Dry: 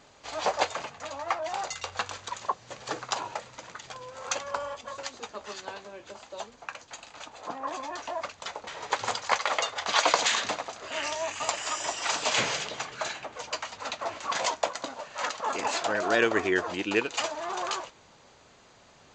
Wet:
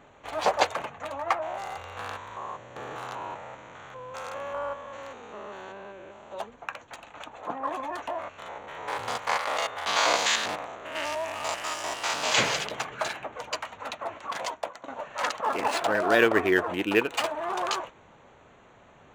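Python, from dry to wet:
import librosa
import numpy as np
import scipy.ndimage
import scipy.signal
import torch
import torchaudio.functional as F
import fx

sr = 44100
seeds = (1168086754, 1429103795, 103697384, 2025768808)

y = fx.spec_steps(x, sr, hold_ms=200, at=(1.41, 6.33), fade=0.02)
y = fx.spec_steps(y, sr, hold_ms=100, at=(8.11, 12.3), fade=0.02)
y = fx.resample_linear(y, sr, factor=3, at=(15.41, 17.45))
y = fx.edit(y, sr, fx.fade_out_to(start_s=13.14, length_s=1.74, floor_db=-11.0), tone=tone)
y = fx.wiener(y, sr, points=9)
y = y * 10.0 ** (3.5 / 20.0)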